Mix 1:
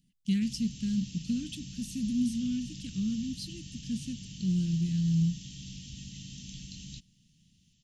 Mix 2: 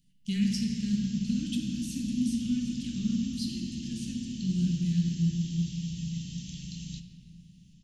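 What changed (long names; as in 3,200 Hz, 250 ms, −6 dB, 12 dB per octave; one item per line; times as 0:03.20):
speech: add parametric band 370 Hz −4.5 dB 2.2 octaves
reverb: on, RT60 2.8 s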